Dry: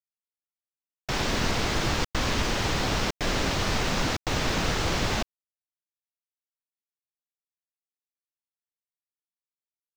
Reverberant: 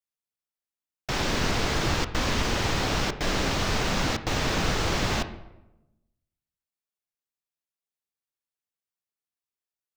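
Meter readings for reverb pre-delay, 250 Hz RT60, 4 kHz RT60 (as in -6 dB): 27 ms, 1.2 s, 0.60 s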